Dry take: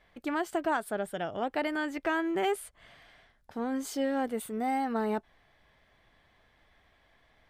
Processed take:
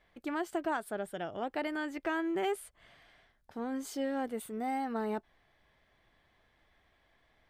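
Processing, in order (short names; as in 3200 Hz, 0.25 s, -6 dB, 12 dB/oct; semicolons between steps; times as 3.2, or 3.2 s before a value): bell 350 Hz +3 dB 0.3 oct; gain -4.5 dB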